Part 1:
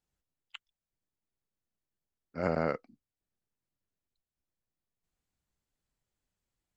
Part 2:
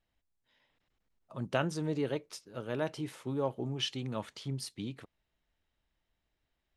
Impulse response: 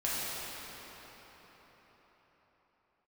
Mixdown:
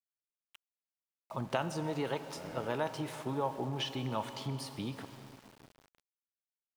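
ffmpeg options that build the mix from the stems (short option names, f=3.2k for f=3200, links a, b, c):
-filter_complex "[0:a]volume=29.5dB,asoftclip=hard,volume=-29.5dB,volume=-12dB[a];[1:a]equalizer=f=880:t=o:w=0.69:g=10.5,acrossover=split=830|3500[b][c][d];[b]acompressor=threshold=-36dB:ratio=4[e];[c]acompressor=threshold=-39dB:ratio=4[f];[d]acompressor=threshold=-49dB:ratio=4[g];[e][f][g]amix=inputs=3:normalize=0,volume=1dB,asplit=2[h][i];[i]volume=-15.5dB[j];[2:a]atrim=start_sample=2205[k];[j][k]afir=irnorm=-1:irlink=0[l];[a][h][l]amix=inputs=3:normalize=0,aeval=exprs='val(0)*gte(abs(val(0)),0.00266)':c=same"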